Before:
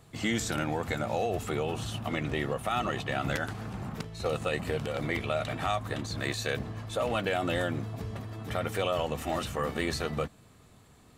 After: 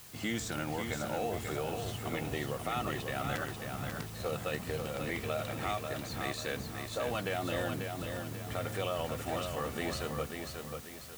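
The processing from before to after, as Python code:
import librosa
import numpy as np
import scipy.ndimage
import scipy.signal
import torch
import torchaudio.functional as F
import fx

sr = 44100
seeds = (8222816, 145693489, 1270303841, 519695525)

p1 = fx.quant_dither(x, sr, seeds[0], bits=6, dither='triangular')
p2 = x + (p1 * 10.0 ** (-8.0 / 20.0))
p3 = fx.echo_feedback(p2, sr, ms=540, feedback_pct=39, wet_db=-5.5)
y = p3 * 10.0 ** (-8.5 / 20.0)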